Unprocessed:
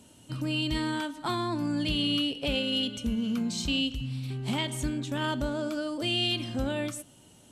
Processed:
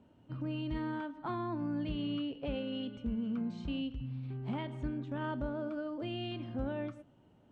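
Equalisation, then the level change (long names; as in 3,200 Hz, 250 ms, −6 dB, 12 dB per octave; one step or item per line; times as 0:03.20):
low-pass filter 1,500 Hz 12 dB per octave
−6.0 dB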